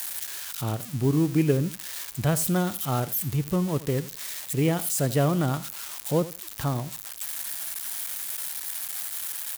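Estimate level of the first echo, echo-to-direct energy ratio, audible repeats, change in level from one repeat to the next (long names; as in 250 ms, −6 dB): −17.0 dB, −17.0 dB, 2, −16.0 dB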